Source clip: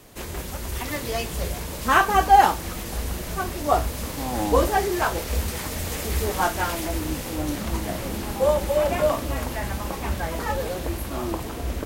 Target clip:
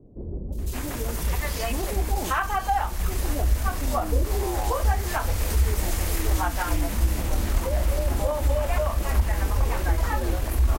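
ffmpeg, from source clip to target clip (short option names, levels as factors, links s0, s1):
-filter_complex "[0:a]acrossover=split=480|3500[s0][s1][s2];[s2]adelay=560[s3];[s1]adelay=640[s4];[s0][s4][s3]amix=inputs=3:normalize=0,acompressor=threshold=0.0447:ratio=3,asubboost=boost=7:cutoff=54,atempo=1.1,volume=1.33"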